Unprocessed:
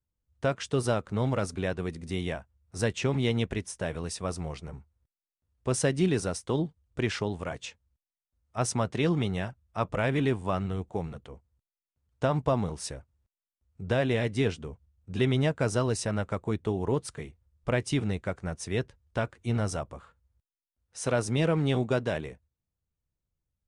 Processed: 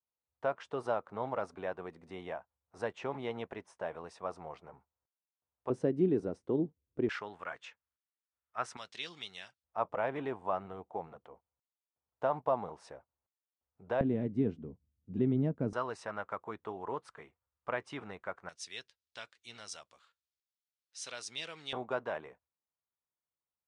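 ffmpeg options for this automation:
-af "asetnsamples=n=441:p=0,asendcmd='5.7 bandpass f 330;7.09 bandpass f 1400;8.77 bandpass f 4300;9.64 bandpass f 830;14.01 bandpass f 240;15.73 bandpass f 1100;18.49 bandpass f 4200;21.73 bandpass f 1000',bandpass=f=860:t=q:w=1.6:csg=0"

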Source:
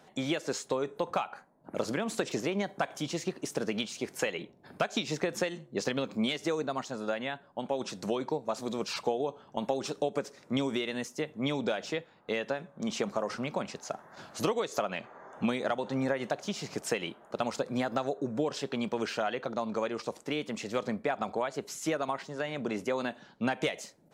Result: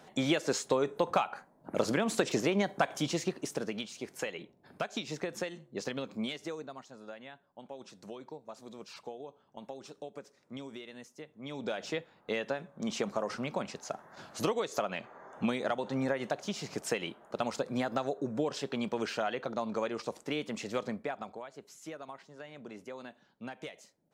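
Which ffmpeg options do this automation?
-af "volume=14.5dB,afade=t=out:st=3.04:d=0.73:silence=0.398107,afade=t=out:st=6.2:d=0.61:silence=0.398107,afade=t=in:st=11.44:d=0.44:silence=0.251189,afade=t=out:st=20.7:d=0.71:silence=0.266073"

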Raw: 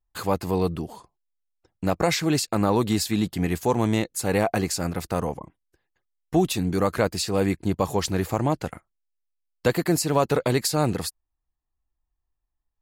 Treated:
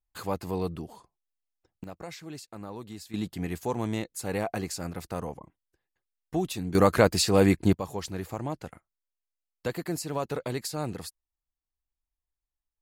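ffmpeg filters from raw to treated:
-af "asetnsamples=n=441:p=0,asendcmd='1.84 volume volume -19dB;3.14 volume volume -8dB;6.75 volume volume 2.5dB;7.73 volume volume -10dB',volume=-7dB"

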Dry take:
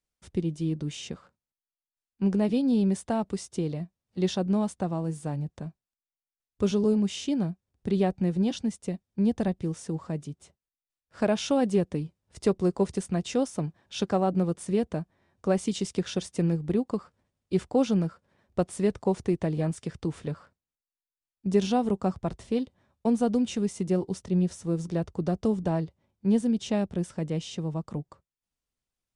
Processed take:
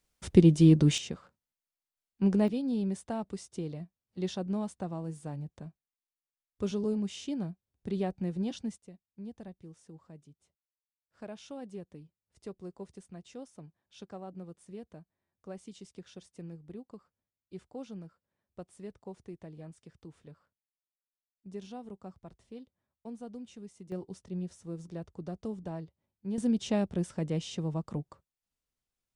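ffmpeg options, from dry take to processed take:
-af "asetnsamples=n=441:p=0,asendcmd='0.98 volume volume -1dB;2.48 volume volume -7.5dB;8.78 volume volume -19dB;23.92 volume volume -12dB;26.38 volume volume -2dB',volume=9.5dB"

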